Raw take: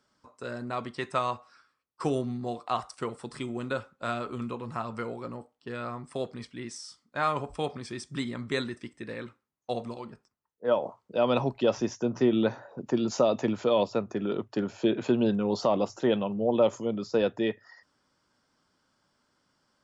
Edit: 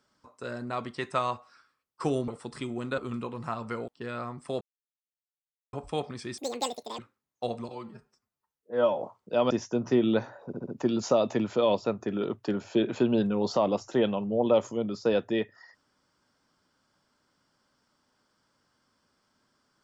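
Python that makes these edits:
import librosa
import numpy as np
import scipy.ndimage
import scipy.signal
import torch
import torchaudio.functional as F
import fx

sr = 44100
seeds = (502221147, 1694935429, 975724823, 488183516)

y = fx.edit(x, sr, fx.cut(start_s=2.28, length_s=0.79),
    fx.cut(start_s=3.77, length_s=0.49),
    fx.cut(start_s=5.16, length_s=0.38),
    fx.silence(start_s=6.27, length_s=1.12),
    fx.speed_span(start_s=8.04, length_s=1.21, speed=2.0),
    fx.stretch_span(start_s=9.95, length_s=0.88, factor=1.5),
    fx.cut(start_s=11.33, length_s=0.47),
    fx.stutter(start_s=12.76, slice_s=0.07, count=4), tone=tone)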